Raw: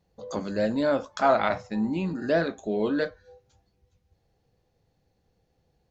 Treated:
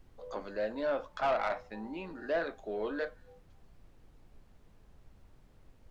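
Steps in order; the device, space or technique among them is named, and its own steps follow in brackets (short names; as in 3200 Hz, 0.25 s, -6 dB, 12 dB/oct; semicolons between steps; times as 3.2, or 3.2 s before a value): aircraft cabin announcement (BPF 440–3100 Hz; soft clip -19 dBFS, distortion -14 dB; brown noise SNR 18 dB); gain -4.5 dB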